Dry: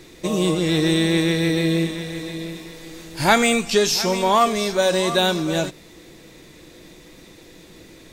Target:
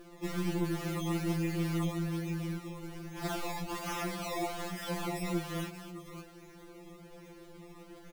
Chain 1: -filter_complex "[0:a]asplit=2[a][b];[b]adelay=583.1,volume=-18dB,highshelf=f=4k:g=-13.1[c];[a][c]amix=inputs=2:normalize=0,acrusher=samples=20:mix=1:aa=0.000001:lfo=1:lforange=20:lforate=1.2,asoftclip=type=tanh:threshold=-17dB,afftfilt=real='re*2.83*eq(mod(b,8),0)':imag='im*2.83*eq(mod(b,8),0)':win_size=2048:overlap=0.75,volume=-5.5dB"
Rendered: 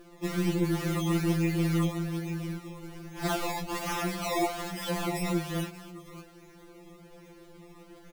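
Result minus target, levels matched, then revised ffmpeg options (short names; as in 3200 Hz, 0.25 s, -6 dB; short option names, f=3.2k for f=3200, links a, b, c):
soft clip: distortion -6 dB
-filter_complex "[0:a]asplit=2[a][b];[b]adelay=583.1,volume=-18dB,highshelf=f=4k:g=-13.1[c];[a][c]amix=inputs=2:normalize=0,acrusher=samples=20:mix=1:aa=0.000001:lfo=1:lforange=20:lforate=1.2,asoftclip=type=tanh:threshold=-25.5dB,afftfilt=real='re*2.83*eq(mod(b,8),0)':imag='im*2.83*eq(mod(b,8),0)':win_size=2048:overlap=0.75,volume=-5.5dB"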